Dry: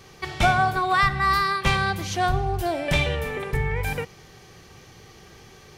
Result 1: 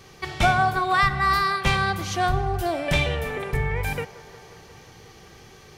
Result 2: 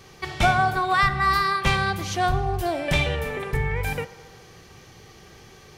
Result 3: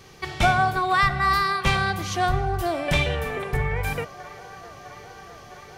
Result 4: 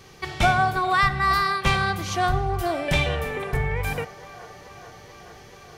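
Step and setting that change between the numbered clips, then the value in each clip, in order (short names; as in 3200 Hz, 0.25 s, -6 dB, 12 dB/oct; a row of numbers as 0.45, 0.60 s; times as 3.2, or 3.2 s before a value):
band-limited delay, time: 179, 70, 658, 433 ms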